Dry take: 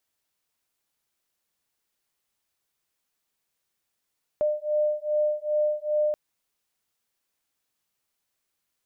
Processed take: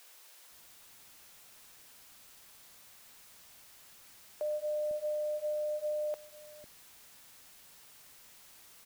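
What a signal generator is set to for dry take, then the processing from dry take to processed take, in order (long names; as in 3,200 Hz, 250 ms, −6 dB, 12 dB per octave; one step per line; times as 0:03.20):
two tones that beat 601 Hz, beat 2.5 Hz, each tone −25.5 dBFS 1.73 s
brickwall limiter −29.5 dBFS
background noise white −57 dBFS
multiband delay without the direct sound highs, lows 500 ms, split 340 Hz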